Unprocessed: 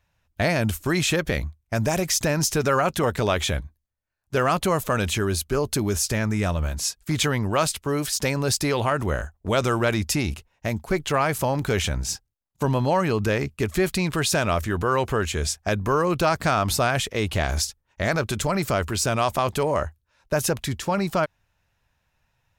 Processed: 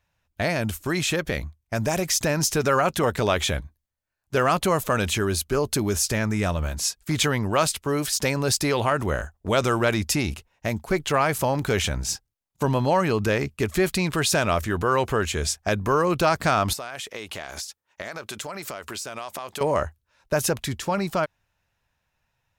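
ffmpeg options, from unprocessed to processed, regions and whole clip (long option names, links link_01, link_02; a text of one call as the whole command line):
ffmpeg -i in.wav -filter_complex "[0:a]asettb=1/sr,asplit=3[link_01][link_02][link_03];[link_01]atrim=end=16.734[link_04];[link_02]atrim=start=16.73:end=19.61,asetpts=PTS-STARTPTS,afade=type=in:duration=0.004:curve=qsin,afade=type=out:start_time=2.876:duration=0.004:curve=qsin,highpass=frequency=510:poles=1,acompressor=threshold=-30dB:ratio=10:attack=3.2:release=140:knee=1:detection=peak[link_05];[link_03]atrim=start=19.606[link_06];[link_04][link_05]acrossfade=duration=0.004:curve1=hsin:curve2=qsin[link_07];[link_07][link_06]acrossfade=duration=0.004:curve1=qsin:curve2=hsin,lowshelf=frequency=150:gain=-3.5,dynaudnorm=framelen=230:gausssize=17:maxgain=3dB,volume=-2dB" out.wav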